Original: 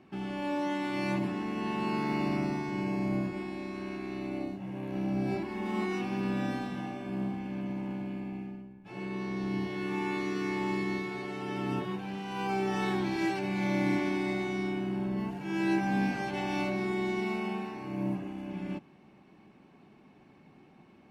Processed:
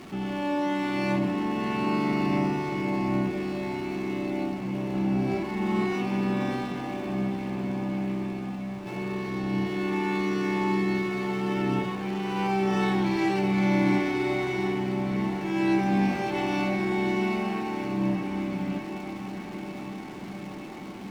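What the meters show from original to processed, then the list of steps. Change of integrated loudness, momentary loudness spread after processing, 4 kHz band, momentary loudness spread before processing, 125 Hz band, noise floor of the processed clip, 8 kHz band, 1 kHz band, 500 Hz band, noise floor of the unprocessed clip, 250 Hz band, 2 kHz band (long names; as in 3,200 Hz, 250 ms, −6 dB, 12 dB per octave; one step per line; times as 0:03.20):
+5.5 dB, 10 LU, +5.0 dB, 8 LU, +6.0 dB, −38 dBFS, can't be measured, +5.5 dB, +6.0 dB, −58 dBFS, +5.5 dB, +4.5 dB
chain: converter with a step at zero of −44 dBFS
high-shelf EQ 7,700 Hz −7.5 dB
notch filter 1,600 Hz, Q 16
on a send: feedback delay with all-pass diffusion 709 ms, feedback 78%, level −11.5 dB
on the sum: level +4 dB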